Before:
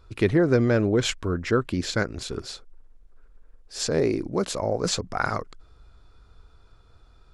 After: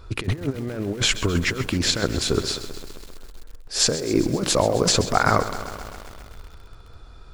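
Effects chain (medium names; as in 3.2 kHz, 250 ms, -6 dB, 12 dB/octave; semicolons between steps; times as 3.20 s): compressor with a negative ratio -27 dBFS, ratio -0.5; bit-crushed delay 131 ms, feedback 80%, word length 7-bit, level -13 dB; trim +6 dB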